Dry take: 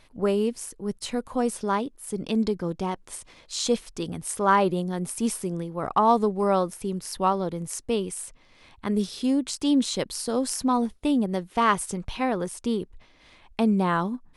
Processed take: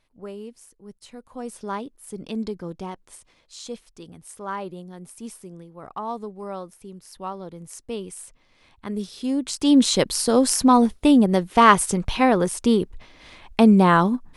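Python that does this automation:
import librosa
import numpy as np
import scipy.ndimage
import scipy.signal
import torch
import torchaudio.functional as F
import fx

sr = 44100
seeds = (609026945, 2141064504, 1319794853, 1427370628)

y = fx.gain(x, sr, db=fx.line((1.18, -13.0), (1.69, -4.5), (2.81, -4.5), (3.64, -11.0), (7.06, -11.0), (8.16, -4.0), (9.13, -4.0), (9.87, 8.0)))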